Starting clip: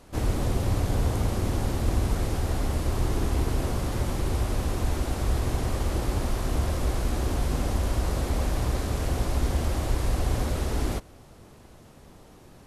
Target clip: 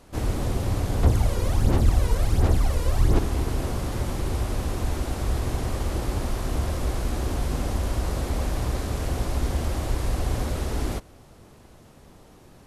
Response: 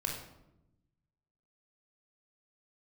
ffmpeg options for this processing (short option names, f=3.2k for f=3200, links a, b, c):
-filter_complex "[0:a]asettb=1/sr,asplit=3[a][b][c];[a]atrim=end=1.034[d];[b]atrim=start=1.03:end=3.19,asetpts=PTS-STARTPTS,afade=t=in:d=0.004:c=qsin,afade=t=out:st=2.156:d=0.004:c=qsin,aphaser=in_gain=1:out_gain=1:delay=2.1:decay=0.59:speed=1.4:type=sinusoidal[e];[c]atrim=start=3.186[f];[d][e]acrossfade=d=0.004:c1=hsin:c2=qsin[g];[g][f]acrossfade=d=0.004:c1=qsin:c2=hsin"